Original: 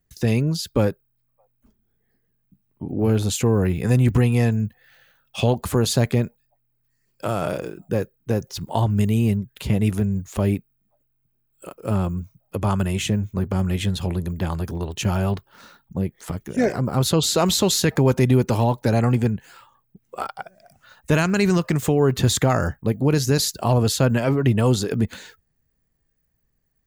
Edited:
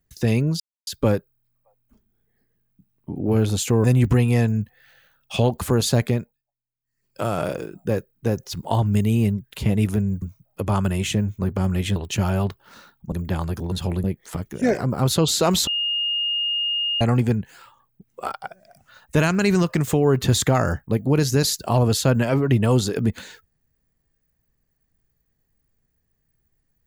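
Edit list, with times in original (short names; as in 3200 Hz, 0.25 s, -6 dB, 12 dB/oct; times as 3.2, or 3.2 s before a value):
0.6 insert silence 0.27 s
3.57–3.88 cut
6.09–7.25 dip -20 dB, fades 0.39 s
10.26–12.17 cut
13.91–14.23 swap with 14.83–15.99
17.62–18.96 bleep 2840 Hz -20.5 dBFS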